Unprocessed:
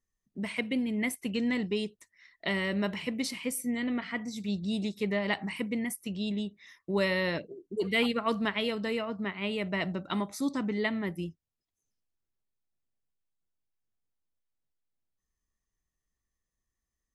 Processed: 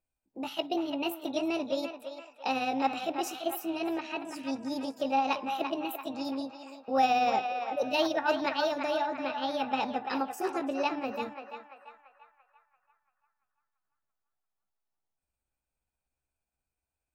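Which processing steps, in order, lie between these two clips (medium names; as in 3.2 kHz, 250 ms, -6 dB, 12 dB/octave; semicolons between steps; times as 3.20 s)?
rotating-head pitch shifter +5 st; peaking EQ 780 Hz +11.5 dB 0.87 oct; band-passed feedback delay 340 ms, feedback 55%, band-pass 1.4 kHz, level -4.5 dB; trim -3 dB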